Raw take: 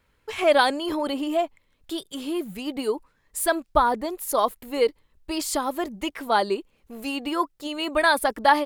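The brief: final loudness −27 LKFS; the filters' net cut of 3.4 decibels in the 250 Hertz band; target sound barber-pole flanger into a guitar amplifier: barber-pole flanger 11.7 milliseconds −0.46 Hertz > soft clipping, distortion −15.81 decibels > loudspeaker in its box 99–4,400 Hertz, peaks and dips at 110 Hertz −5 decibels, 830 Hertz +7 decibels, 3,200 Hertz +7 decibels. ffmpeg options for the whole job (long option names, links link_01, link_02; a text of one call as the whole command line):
ffmpeg -i in.wav -filter_complex "[0:a]equalizer=frequency=250:width_type=o:gain=-4.5,asplit=2[link_01][link_02];[link_02]adelay=11.7,afreqshift=-0.46[link_03];[link_01][link_03]amix=inputs=2:normalize=1,asoftclip=threshold=-15.5dB,highpass=99,equalizer=frequency=110:width_type=q:width=4:gain=-5,equalizer=frequency=830:width_type=q:width=4:gain=7,equalizer=frequency=3200:width_type=q:width=4:gain=7,lowpass=frequency=4400:width=0.5412,lowpass=frequency=4400:width=1.3066,volume=1dB" out.wav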